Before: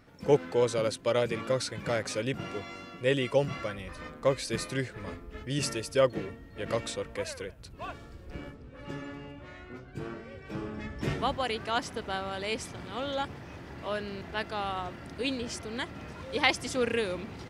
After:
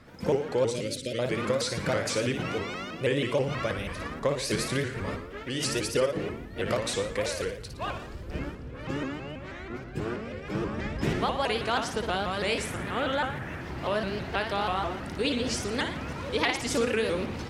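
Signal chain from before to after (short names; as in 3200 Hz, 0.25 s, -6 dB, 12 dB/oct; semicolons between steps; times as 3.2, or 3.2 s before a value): 12.56–13.61 EQ curve 1100 Hz 0 dB, 1700 Hz +7 dB, 4800 Hz -8 dB, 9600 Hz +1 dB; compressor 5:1, threshold -30 dBFS, peak gain reduction 12.5 dB; 0.65–1.19 Butterworth band-stop 960 Hz, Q 0.53; 5.17–5.65 tone controls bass -10 dB, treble -3 dB; flutter echo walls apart 9.9 m, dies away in 0.54 s; shaped vibrato saw up 6.2 Hz, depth 160 cents; gain +6 dB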